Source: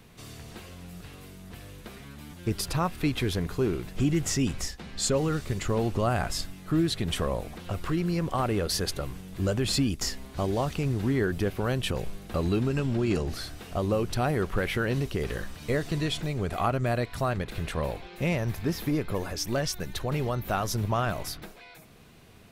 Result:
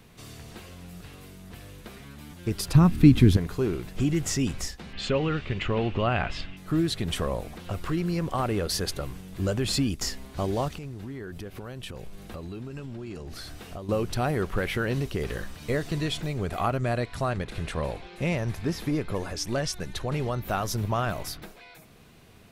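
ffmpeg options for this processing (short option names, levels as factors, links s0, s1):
-filter_complex "[0:a]asettb=1/sr,asplit=3[s0][s1][s2];[s0]atrim=end=2.754[s3];[s1]atrim=start=2.75:end=3.37,asetpts=PTS-STARTPTS,afade=t=in:d=0.004:c=qsin,afade=t=out:st=0.616:d=0.004:c=qsin,lowshelf=f=370:t=q:w=1.5:g=11.5[s4];[s2]atrim=start=3.366[s5];[s3][s4]acrossfade=d=0.004:c1=hsin:c2=qsin[s6];[s6][s5]acrossfade=d=0.004:c1=qsin:c2=hsin,asettb=1/sr,asplit=3[s7][s8][s9];[s7]atrim=end=4.934[s10];[s8]atrim=start=4.93:end=6.57,asetpts=PTS-STARTPTS,afade=t=in:d=0.004:c=qsin,afade=t=out:st=1.636:d=0.004:c=qsin,lowpass=f=2800:t=q:w=2.9[s11];[s9]atrim=start=6.566[s12];[s10][s11]acrossfade=d=0.004:c1=hsin:c2=qsin[s13];[s13][s12]acrossfade=d=0.004:c1=qsin:c2=hsin,asettb=1/sr,asplit=3[s14][s15][s16];[s14]atrim=end=10.684[s17];[s15]atrim=start=10.68:end=13.89,asetpts=PTS-STARTPTS,afade=t=in:d=0.004:c=qsin,afade=t=out:st=3.206:d=0.004:c=qsin,acompressor=threshold=0.0178:ratio=5:attack=3.2:release=140:knee=1:detection=peak[s18];[s16]atrim=start=13.886[s19];[s17][s18]acrossfade=d=0.004:c1=hsin:c2=qsin[s20];[s20][s19]acrossfade=d=0.004:c1=qsin:c2=hsin,asettb=1/sr,asplit=3[s21][s22][s23];[s21]atrim=end=16.824[s24];[s22]atrim=start=16.82:end=20.43,asetpts=PTS-STARTPTS,afade=t=in:d=0.004:c=qsin,afade=t=out:st=3.606:d=0.004:c=qsin,lowpass=f=11000:w=0.5412,lowpass=f=11000:w=1.3066[s25];[s23]atrim=start=20.426[s26];[s24][s25]acrossfade=d=0.004:c1=hsin:c2=qsin[s27];[s27][s26]acrossfade=d=0.004:c1=qsin:c2=hsin"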